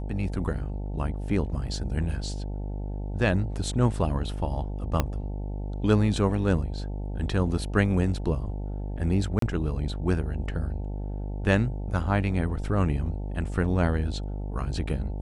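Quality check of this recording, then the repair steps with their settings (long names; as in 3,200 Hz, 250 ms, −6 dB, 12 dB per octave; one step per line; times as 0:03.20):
mains buzz 50 Hz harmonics 18 −32 dBFS
0:05.00: click −10 dBFS
0:09.39–0:09.42: drop-out 33 ms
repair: click removal
hum removal 50 Hz, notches 18
repair the gap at 0:09.39, 33 ms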